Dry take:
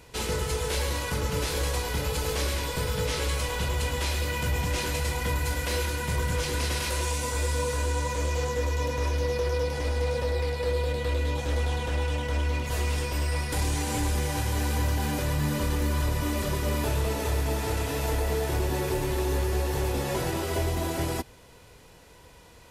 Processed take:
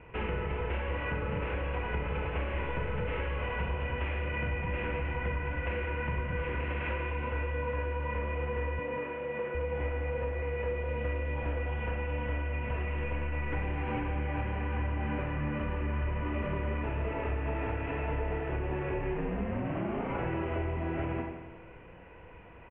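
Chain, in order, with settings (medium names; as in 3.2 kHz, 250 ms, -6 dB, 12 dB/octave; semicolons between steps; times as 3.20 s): 19.13–20.17 s: ring modulator 86 Hz -> 460 Hz; steep low-pass 2.8 kHz 72 dB/octave; Schroeder reverb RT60 0.52 s, combs from 33 ms, DRR 3.5 dB; compression 5:1, threshold -30 dBFS, peak gain reduction 8.5 dB; 8.79–9.55 s: high-pass 150 Hz 24 dB/octave; feedback delay 176 ms, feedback 48%, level -13 dB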